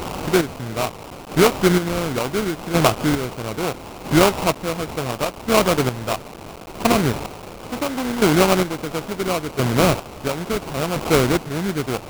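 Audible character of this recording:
a quantiser's noise floor 6 bits, dither triangular
chopped level 0.73 Hz, depth 60%, duty 30%
aliases and images of a low sample rate 1,800 Hz, jitter 20%

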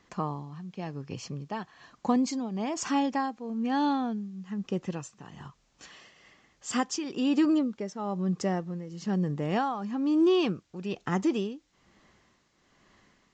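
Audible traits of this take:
tremolo triangle 1.1 Hz, depth 80%
a quantiser's noise floor 12 bits, dither triangular
SBC

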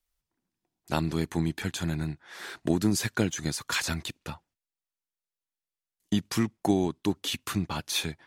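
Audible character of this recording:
background noise floor −92 dBFS
spectral slope −4.5 dB per octave

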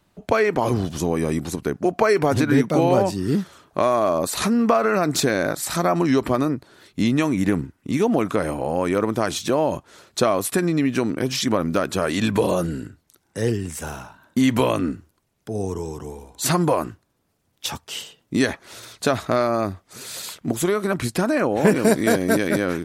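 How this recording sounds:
background noise floor −68 dBFS
spectral slope −5.0 dB per octave

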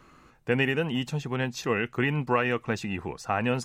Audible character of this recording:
background noise floor −58 dBFS
spectral slope −4.5 dB per octave

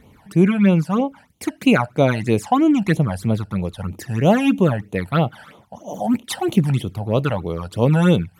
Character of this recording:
phaser sweep stages 12, 3.1 Hz, lowest notch 360–1,700 Hz

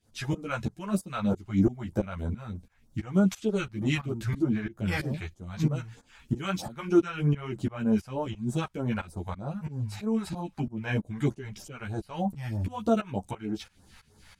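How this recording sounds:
phaser sweep stages 2, 3.2 Hz, lowest notch 260–2,500 Hz
tremolo saw up 3 Hz, depth 95%
a shimmering, thickened sound

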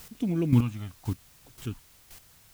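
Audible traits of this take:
phaser sweep stages 2, 0.88 Hz, lowest notch 350–1,100 Hz
a quantiser's noise floor 10 bits, dither triangular
chopped level 1.9 Hz, depth 65%, duty 15%

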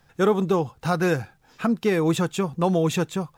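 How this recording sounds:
a quantiser's noise floor 12 bits, dither none
AAC

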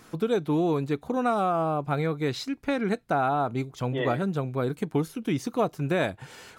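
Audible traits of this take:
background noise floor −53 dBFS
spectral slope −6.0 dB per octave

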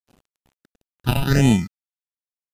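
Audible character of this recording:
aliases and images of a low sample rate 1,100 Hz, jitter 0%
phaser sweep stages 6, 1.5 Hz, lowest notch 450–1,400 Hz
a quantiser's noise floor 10 bits, dither none
MP3

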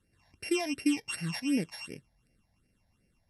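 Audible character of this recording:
a buzz of ramps at a fixed pitch in blocks of 16 samples
phaser sweep stages 8, 2.7 Hz, lowest notch 360–1,100 Hz
MP2

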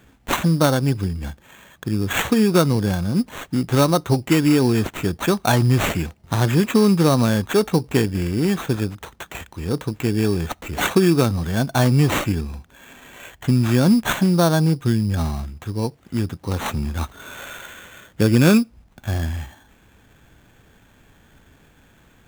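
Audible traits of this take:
aliases and images of a low sample rate 5,000 Hz, jitter 0%

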